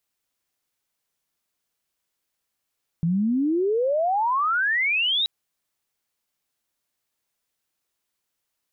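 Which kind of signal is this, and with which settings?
chirp logarithmic 160 Hz -> 3900 Hz -19 dBFS -> -19.5 dBFS 2.23 s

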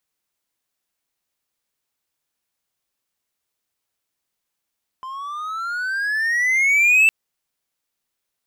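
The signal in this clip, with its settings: gliding synth tone triangle, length 2.06 s, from 1030 Hz, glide +16.5 st, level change +19.5 dB, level -8 dB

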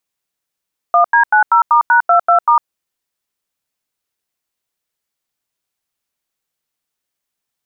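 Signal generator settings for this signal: DTMF "1D90*#22*", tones 0.104 s, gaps 88 ms, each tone -9.5 dBFS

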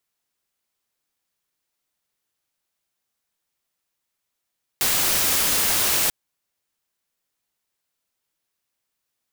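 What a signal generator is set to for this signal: noise white, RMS -20.5 dBFS 1.29 s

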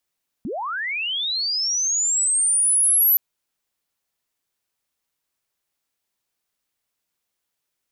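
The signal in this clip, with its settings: chirp linear 180 Hz -> 12000 Hz -25.5 dBFS -> -13 dBFS 2.72 s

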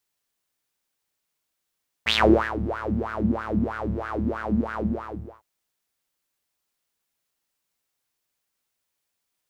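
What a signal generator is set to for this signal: synth patch with filter wobble D2, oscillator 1 triangle, interval +7 st, oscillator 2 level -8 dB, noise -28 dB, filter bandpass, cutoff 400 Hz, Q 7.4, filter envelope 2 oct, filter decay 0.46 s, filter sustain 20%, attack 25 ms, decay 0.45 s, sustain -15 dB, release 0.65 s, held 2.71 s, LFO 3.1 Hz, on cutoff 1.5 oct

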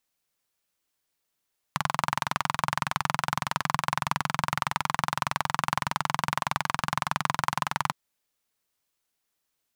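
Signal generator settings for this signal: single-cylinder engine model, steady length 6.16 s, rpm 2600, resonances 150/1000 Hz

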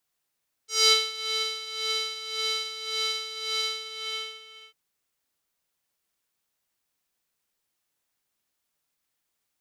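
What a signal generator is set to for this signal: synth patch with tremolo A4, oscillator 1 square, oscillator 2 saw, interval 0 st, detune 8 cents, oscillator 2 level -9 dB, sub -24.5 dB, noise -21 dB, filter bandpass, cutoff 3000 Hz, Q 2.9, filter envelope 1 oct, attack 0.229 s, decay 0.22 s, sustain -12 dB, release 1.07 s, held 2.98 s, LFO 1.8 Hz, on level 10.5 dB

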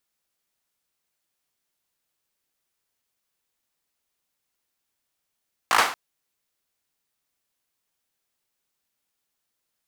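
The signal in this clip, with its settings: hand clap length 0.23 s, bursts 5, apart 18 ms, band 1100 Hz, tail 0.43 s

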